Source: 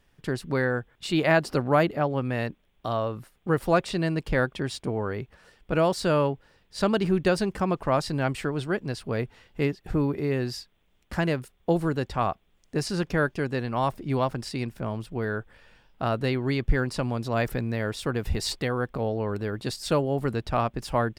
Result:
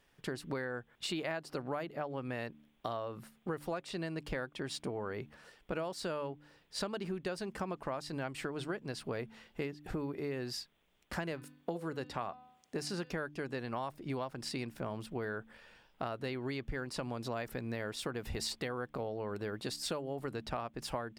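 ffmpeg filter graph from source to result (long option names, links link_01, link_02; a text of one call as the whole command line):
ffmpeg -i in.wav -filter_complex "[0:a]asettb=1/sr,asplit=3[link_01][link_02][link_03];[link_01]atrim=end=11.324[link_04];[link_02]atrim=start=11.32:end=13.11,asetpts=PTS-STARTPTS,afade=type=in:duration=0.004:curve=qsin,afade=type=out:start_time=1.786:duration=0.004:curve=qsin,highpass=78,bandreject=frequency=251.4:width_type=h:width=4,bandreject=frequency=502.8:width_type=h:width=4,bandreject=frequency=754.2:width_type=h:width=4,bandreject=frequency=1005.6:width_type=h:width=4,bandreject=frequency=1257:width_type=h:width=4,bandreject=frequency=1508.4:width_type=h:width=4,bandreject=frequency=1759.8:width_type=h:width=4,bandreject=frequency=2011.2:width_type=h:width=4,bandreject=frequency=2262.6:width_type=h:width=4,bandreject=frequency=2514:width_type=h:width=4,bandreject=frequency=2765.4:width_type=h:width=4,bandreject=frequency=3016.8:width_type=h:width=4,bandreject=frequency=3268.2:width_type=h:width=4,bandreject=frequency=3519.6:width_type=h:width=4,bandreject=frequency=3771:width_type=h:width=4,bandreject=frequency=4022.4:width_type=h:width=4,bandreject=frequency=4273.8:width_type=h:width=4,bandreject=frequency=4525.2:width_type=h:width=4,bandreject=frequency=4776.6:width_type=h:width=4[link_05];[link_03]atrim=start=13.106[link_06];[link_04][link_05]acrossfade=duration=0.004:curve1=hsin:curve2=qsin[link_07];[link_07][link_06]acrossfade=duration=0.004:curve1=qsin:curve2=hsin,lowshelf=frequency=150:gain=-10.5,bandreject=frequency=74.04:width_type=h:width=4,bandreject=frequency=148.08:width_type=h:width=4,bandreject=frequency=222.12:width_type=h:width=4,bandreject=frequency=296.16:width_type=h:width=4,acompressor=threshold=-33dB:ratio=10,volume=-1.5dB" out.wav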